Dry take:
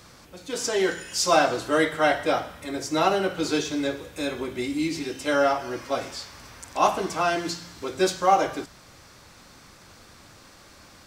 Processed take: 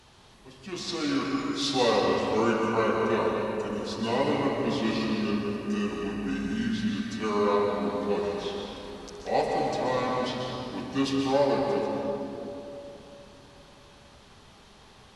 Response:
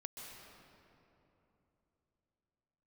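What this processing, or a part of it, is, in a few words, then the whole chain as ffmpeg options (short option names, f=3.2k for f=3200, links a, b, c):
slowed and reverbed: -filter_complex "[0:a]asetrate=32193,aresample=44100[a];[1:a]atrim=start_sample=2205[b];[a][b]afir=irnorm=-1:irlink=0"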